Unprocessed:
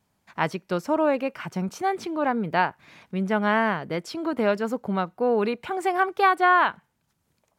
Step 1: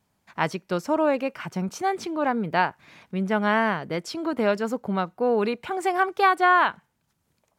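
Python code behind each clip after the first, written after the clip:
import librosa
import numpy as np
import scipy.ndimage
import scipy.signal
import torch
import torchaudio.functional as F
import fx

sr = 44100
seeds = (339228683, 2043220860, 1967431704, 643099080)

y = fx.dynamic_eq(x, sr, hz=6600.0, q=0.94, threshold_db=-46.0, ratio=4.0, max_db=4)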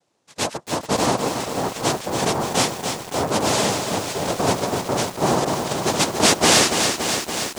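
y = fx.noise_vocoder(x, sr, seeds[0], bands=2)
y = fx.echo_crushed(y, sr, ms=284, feedback_pct=80, bits=6, wet_db=-6.0)
y = y * 10.0 ** (2.0 / 20.0)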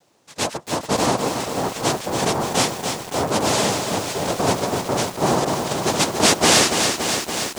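y = fx.law_mismatch(x, sr, coded='mu')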